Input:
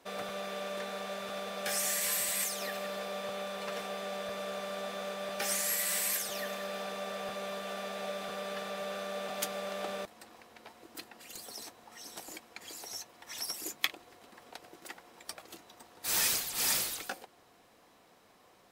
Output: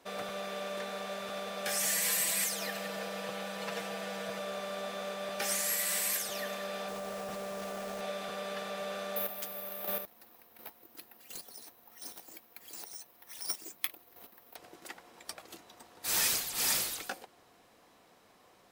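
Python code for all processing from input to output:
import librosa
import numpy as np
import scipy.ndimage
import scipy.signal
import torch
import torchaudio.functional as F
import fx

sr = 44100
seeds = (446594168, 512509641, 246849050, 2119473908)

y = fx.chain(x, sr, fx.highpass(hz=48.0, slope=12),
    fx.notch(hz=1200.0, q=17.0),
    fx.comb(ms=6.1, depth=0.72), at=(1.8, 4.39))
y = fx.chain(y, sr, fx.spacing_loss(db_at_10k=38),
    fx.quant_dither(seeds[0], bits=8, dither='none'),
    fx.env_flatten(amount_pct=100), at=(6.88, 8.01))
y = fx.chain(y, sr, fx.chopper(hz=1.4, depth_pct=60, duty_pct=15),
    fx.resample_bad(factor=3, down='filtered', up='zero_stuff'), at=(9.16, 14.56))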